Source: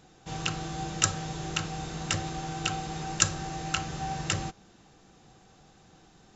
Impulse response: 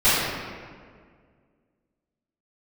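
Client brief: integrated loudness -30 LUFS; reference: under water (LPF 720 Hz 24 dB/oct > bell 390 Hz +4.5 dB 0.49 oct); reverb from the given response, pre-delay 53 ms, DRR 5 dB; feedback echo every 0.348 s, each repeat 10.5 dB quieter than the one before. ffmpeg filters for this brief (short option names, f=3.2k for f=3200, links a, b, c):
-filter_complex "[0:a]aecho=1:1:348|696|1044:0.299|0.0896|0.0269,asplit=2[a][b];[1:a]atrim=start_sample=2205,adelay=53[c];[b][c]afir=irnorm=-1:irlink=0,volume=-26dB[d];[a][d]amix=inputs=2:normalize=0,lowpass=f=720:w=0.5412,lowpass=f=720:w=1.3066,equalizer=f=390:t=o:w=0.49:g=4.5,volume=4.5dB"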